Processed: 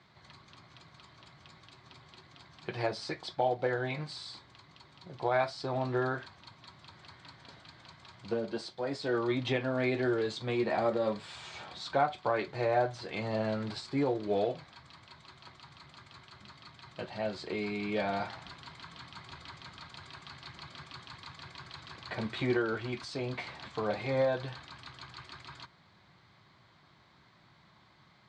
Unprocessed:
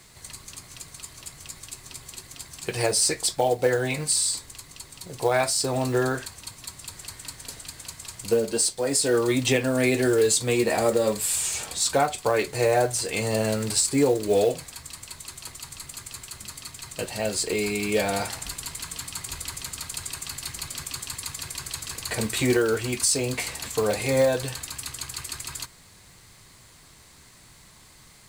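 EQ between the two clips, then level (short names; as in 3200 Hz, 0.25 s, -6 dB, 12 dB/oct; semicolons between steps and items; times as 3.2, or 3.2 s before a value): speaker cabinet 130–3500 Hz, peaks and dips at 260 Hz -5 dB, 460 Hz -9 dB, 1900 Hz -4 dB, 2700 Hz -9 dB; -4.0 dB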